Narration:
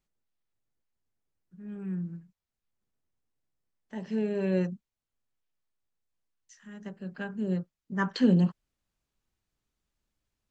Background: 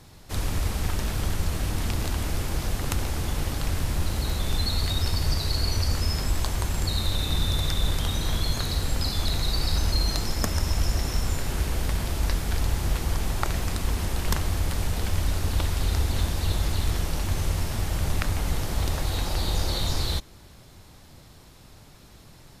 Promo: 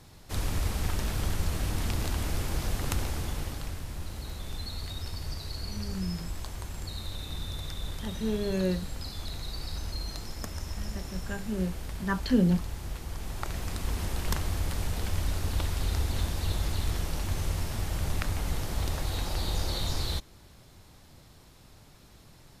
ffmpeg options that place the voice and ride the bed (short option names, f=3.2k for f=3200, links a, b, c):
-filter_complex "[0:a]adelay=4100,volume=-1dB[a];[1:a]volume=4dB,afade=t=out:st=2.97:d=0.84:silence=0.375837,afade=t=in:st=13.11:d=0.91:silence=0.446684[b];[a][b]amix=inputs=2:normalize=0"